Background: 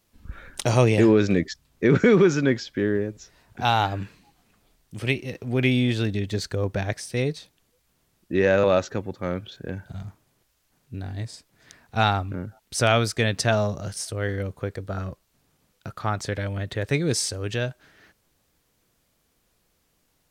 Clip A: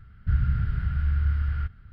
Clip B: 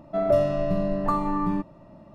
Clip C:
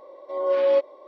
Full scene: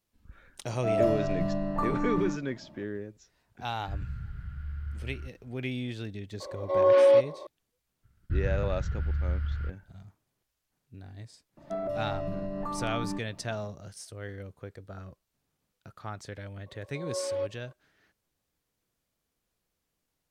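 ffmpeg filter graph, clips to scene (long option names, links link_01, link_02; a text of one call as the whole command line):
ffmpeg -i bed.wav -i cue0.wav -i cue1.wav -i cue2.wav -filter_complex "[2:a]asplit=2[link_01][link_02];[1:a]asplit=2[link_03][link_04];[3:a]asplit=2[link_05][link_06];[0:a]volume=-13dB[link_07];[link_01]asplit=2[link_08][link_09];[link_09]adelay=47,volume=-3.5dB[link_10];[link_08][link_10]amix=inputs=2:normalize=0[link_11];[link_05]alimiter=level_in=16.5dB:limit=-1dB:release=50:level=0:latency=1[link_12];[link_04]agate=range=-33dB:threshold=-41dB:ratio=3:release=100:detection=peak[link_13];[link_02]alimiter=limit=-21.5dB:level=0:latency=1:release=150[link_14];[link_11]atrim=end=2.14,asetpts=PTS-STARTPTS,volume=-6dB,afade=type=in:duration=0.004:curve=hsin,afade=type=out:start_time=2.136:duration=0.004:curve=hsin,adelay=700[link_15];[link_03]atrim=end=1.92,asetpts=PTS-STARTPTS,volume=-13dB,afade=type=in:duration=0.004:curve=hsin,afade=type=out:start_time=1.916:duration=0.004:curve=hsin,adelay=159201S[link_16];[link_12]atrim=end=1.07,asetpts=PTS-STARTPTS,volume=-12.5dB,afade=type=in:duration=0.004:curve=hsin,afade=type=out:start_time=1.066:duration=0.004:curve=hsin,adelay=6400[link_17];[link_13]atrim=end=1.92,asetpts=PTS-STARTPTS,volume=-5.5dB,afade=type=in:duration=0.004:curve=hsin,afade=type=out:start_time=1.916:duration=0.004:curve=hsin,adelay=8030[link_18];[link_14]atrim=end=2.14,asetpts=PTS-STARTPTS,volume=-4.5dB,afade=type=in:duration=0.004:curve=hsin,afade=type=out:start_time=2.136:duration=0.004:curve=hsin,adelay=11570[link_19];[link_06]atrim=end=1.07,asetpts=PTS-STARTPTS,volume=-12.5dB,afade=type=in:duration=0.004:curve=hsin,afade=type=out:start_time=1.066:duration=0.004:curve=hsin,adelay=16660[link_20];[link_07][link_15][link_16][link_17][link_18][link_19][link_20]amix=inputs=7:normalize=0" out.wav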